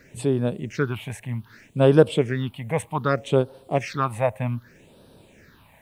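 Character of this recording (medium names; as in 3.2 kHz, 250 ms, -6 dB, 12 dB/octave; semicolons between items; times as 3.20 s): a quantiser's noise floor 12-bit, dither none; phasing stages 6, 0.64 Hz, lowest notch 340–2000 Hz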